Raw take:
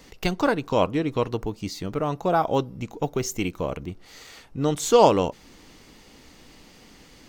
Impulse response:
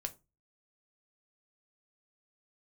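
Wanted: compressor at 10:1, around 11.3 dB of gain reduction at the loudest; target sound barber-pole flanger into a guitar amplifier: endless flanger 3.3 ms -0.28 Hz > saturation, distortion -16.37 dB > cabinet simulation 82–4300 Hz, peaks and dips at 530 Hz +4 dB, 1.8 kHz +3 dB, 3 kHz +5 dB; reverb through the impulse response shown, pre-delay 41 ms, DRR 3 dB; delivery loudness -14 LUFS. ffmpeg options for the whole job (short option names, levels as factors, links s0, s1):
-filter_complex "[0:a]acompressor=threshold=0.0794:ratio=10,asplit=2[s0][s1];[1:a]atrim=start_sample=2205,adelay=41[s2];[s1][s2]afir=irnorm=-1:irlink=0,volume=0.794[s3];[s0][s3]amix=inputs=2:normalize=0,asplit=2[s4][s5];[s5]adelay=3.3,afreqshift=-0.28[s6];[s4][s6]amix=inputs=2:normalize=1,asoftclip=threshold=0.0841,highpass=82,equalizer=f=530:t=q:w=4:g=4,equalizer=f=1800:t=q:w=4:g=3,equalizer=f=3000:t=q:w=4:g=5,lowpass=f=4300:w=0.5412,lowpass=f=4300:w=1.3066,volume=7.08"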